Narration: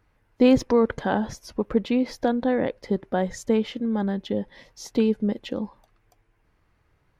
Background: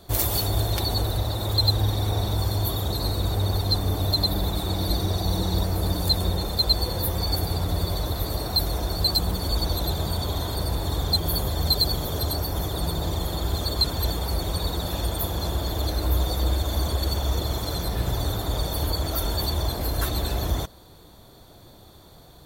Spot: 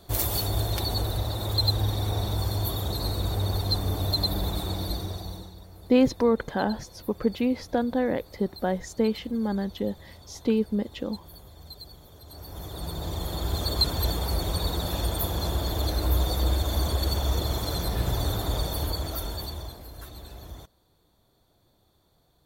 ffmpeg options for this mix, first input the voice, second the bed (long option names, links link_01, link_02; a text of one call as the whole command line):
ffmpeg -i stem1.wav -i stem2.wav -filter_complex "[0:a]adelay=5500,volume=-2.5dB[link_01];[1:a]volume=18.5dB,afade=type=out:start_time=4.58:duration=0.96:silence=0.105925,afade=type=in:start_time=12.25:duration=1.49:silence=0.0841395,afade=type=out:start_time=18.47:duration=1.37:silence=0.158489[link_02];[link_01][link_02]amix=inputs=2:normalize=0" out.wav